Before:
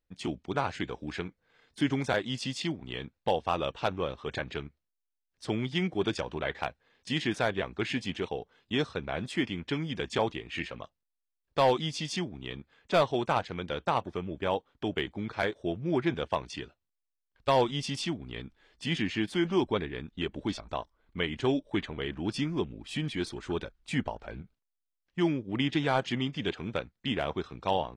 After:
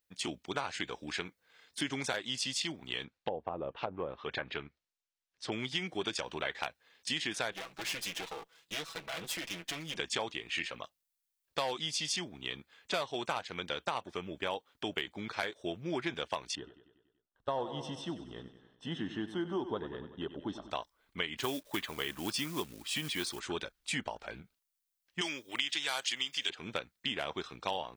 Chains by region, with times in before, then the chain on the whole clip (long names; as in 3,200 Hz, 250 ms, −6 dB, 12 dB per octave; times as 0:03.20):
0:03.04–0:05.52: treble cut that deepens with the level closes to 540 Hz, closed at −25.5 dBFS + high-frequency loss of the air 90 metres
0:07.52–0:09.96: lower of the sound and its delayed copy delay 6.1 ms + downward compressor, threshold −34 dBFS
0:16.55–0:20.71: moving average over 19 samples + repeating echo 95 ms, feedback 59%, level −13 dB
0:21.38–0:23.40: parametric band 1,100 Hz +5 dB 0.4 octaves + log-companded quantiser 6 bits
0:25.21–0:26.50: spectral tilt +4.5 dB per octave + notch filter 200 Hz, Q 5.4
whole clip: spectral tilt +3 dB per octave; downward compressor 5 to 1, threshold −31 dBFS